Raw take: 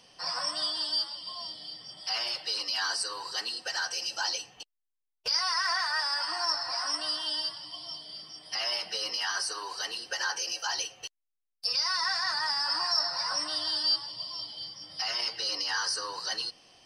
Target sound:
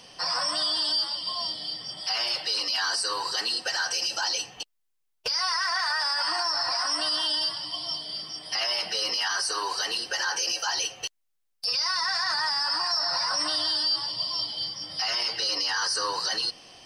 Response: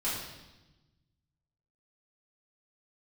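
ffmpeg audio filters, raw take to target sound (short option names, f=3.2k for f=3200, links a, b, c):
-af "alimiter=level_in=3dB:limit=-24dB:level=0:latency=1:release=27,volume=-3dB,volume=8.5dB"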